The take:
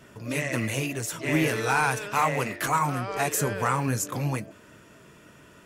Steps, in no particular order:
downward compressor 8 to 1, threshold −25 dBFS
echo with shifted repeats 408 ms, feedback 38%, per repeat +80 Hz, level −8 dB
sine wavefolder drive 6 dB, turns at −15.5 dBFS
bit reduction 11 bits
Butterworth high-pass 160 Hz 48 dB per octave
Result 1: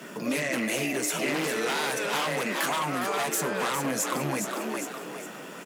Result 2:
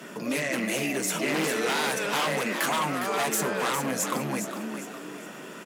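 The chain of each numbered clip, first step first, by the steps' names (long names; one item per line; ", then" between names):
bit reduction, then sine wavefolder, then Butterworth high-pass, then echo with shifted repeats, then downward compressor
sine wavefolder, then bit reduction, then downward compressor, then echo with shifted repeats, then Butterworth high-pass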